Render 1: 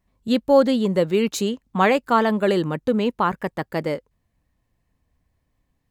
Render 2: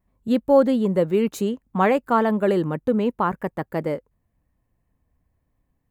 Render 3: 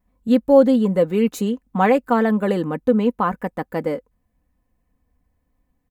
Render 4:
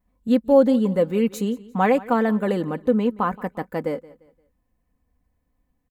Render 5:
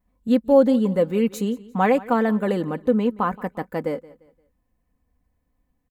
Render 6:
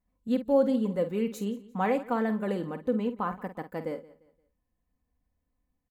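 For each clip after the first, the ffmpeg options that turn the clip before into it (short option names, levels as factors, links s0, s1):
-af "equalizer=f=4500:t=o:w=2:g=-11"
-af "aecho=1:1:4:0.52,volume=1.12"
-af "aecho=1:1:174|348|522:0.0944|0.0321|0.0109,volume=0.75"
-af anull
-filter_complex "[0:a]asplit=2[s0][s1];[s1]adelay=50,volume=0.282[s2];[s0][s2]amix=inputs=2:normalize=0,volume=0.376"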